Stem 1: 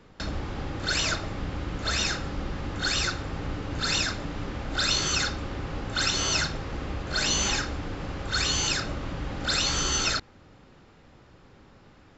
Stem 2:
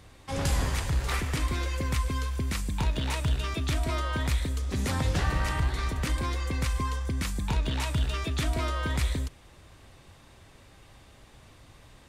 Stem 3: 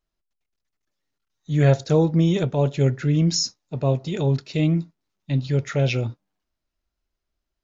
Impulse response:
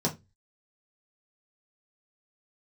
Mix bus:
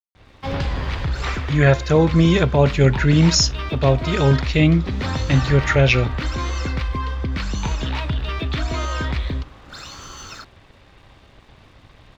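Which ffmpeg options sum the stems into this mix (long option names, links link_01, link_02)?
-filter_complex "[0:a]equalizer=frequency=1100:width=2.3:gain=9.5,adelay=250,volume=-16.5dB[link_01];[1:a]lowpass=frequency=4300:width=0.5412,lowpass=frequency=4300:width=1.3066,acompressor=threshold=-27dB:ratio=4,adelay=150,volume=3dB[link_02];[2:a]equalizer=frequency=1700:width=0.81:gain=10,volume=1dB[link_03];[link_01][link_02][link_03]amix=inputs=3:normalize=0,dynaudnorm=framelen=140:gausssize=3:maxgain=4.5dB,aeval=exprs='sgn(val(0))*max(abs(val(0))-0.002,0)':channel_layout=same"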